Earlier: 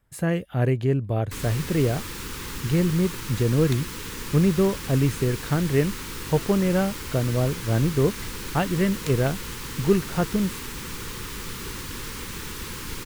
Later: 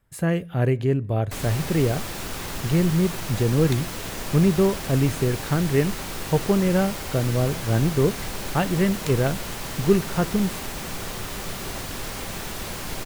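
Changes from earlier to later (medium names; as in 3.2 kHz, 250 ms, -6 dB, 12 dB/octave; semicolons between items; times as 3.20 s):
first sound: remove Butterworth band-stop 670 Hz, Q 1.6; reverb: on, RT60 0.60 s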